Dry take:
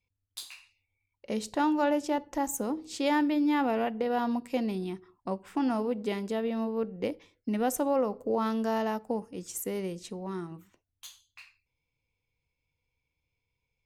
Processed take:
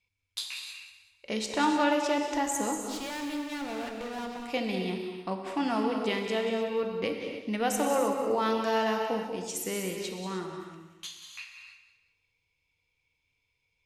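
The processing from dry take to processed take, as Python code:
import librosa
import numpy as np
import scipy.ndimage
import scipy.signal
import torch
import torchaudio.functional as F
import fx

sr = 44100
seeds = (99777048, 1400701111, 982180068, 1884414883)

p1 = scipy.signal.sosfilt(scipy.signal.cheby1(4, 1.0, 12000.0, 'lowpass', fs=sr, output='sos'), x)
p2 = fx.peak_eq(p1, sr, hz=2800.0, db=10.0, octaves=2.8)
p3 = fx.tube_stage(p2, sr, drive_db=34.0, bias=0.8, at=(2.77, 4.48))
p4 = p3 + fx.echo_feedback(p3, sr, ms=188, feedback_pct=33, wet_db=-12.0, dry=0)
p5 = fx.rev_gated(p4, sr, seeds[0], gate_ms=340, shape='flat', drr_db=3.0)
y = p5 * 10.0 ** (-2.0 / 20.0)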